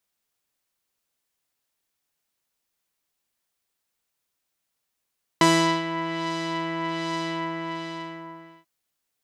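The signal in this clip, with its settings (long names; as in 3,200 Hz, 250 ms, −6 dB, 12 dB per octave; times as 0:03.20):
subtractive patch with filter wobble E4, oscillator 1 saw, interval +19 semitones, oscillator 2 level −2.5 dB, sub −12 dB, filter lowpass, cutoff 2,000 Hz, Q 1, filter envelope 2 octaves, attack 1.9 ms, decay 0.41 s, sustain −12.5 dB, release 1.37 s, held 1.87 s, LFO 1.3 Hz, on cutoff 0.6 octaves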